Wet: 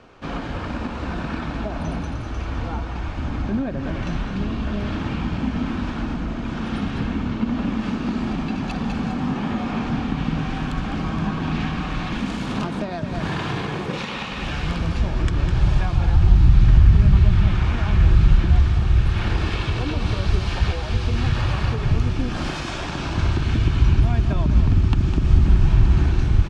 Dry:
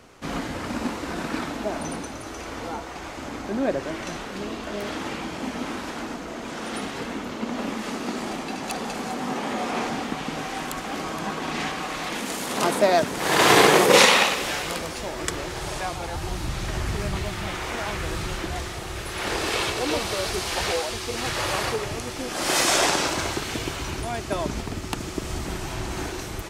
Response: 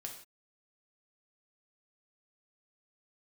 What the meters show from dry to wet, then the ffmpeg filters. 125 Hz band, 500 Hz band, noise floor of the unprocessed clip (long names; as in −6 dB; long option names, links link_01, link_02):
+16.0 dB, −7.0 dB, −35 dBFS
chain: -af "aecho=1:1:205:0.316,acompressor=threshold=-25dB:ratio=16,lowpass=3400,bandreject=frequency=2000:width=9.9,asubboost=boost=10:cutoff=150,volume=2dB"